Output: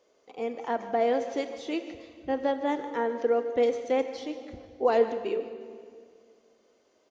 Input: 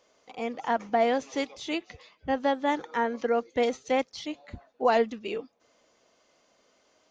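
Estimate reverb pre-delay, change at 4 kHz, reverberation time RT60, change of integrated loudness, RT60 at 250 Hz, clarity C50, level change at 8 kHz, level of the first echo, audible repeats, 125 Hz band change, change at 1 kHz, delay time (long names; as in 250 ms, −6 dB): 22 ms, −5.5 dB, 2.1 s, 0.0 dB, 2.6 s, 9.5 dB, can't be measured, −15.5 dB, 1, can't be measured, −3.0 dB, 150 ms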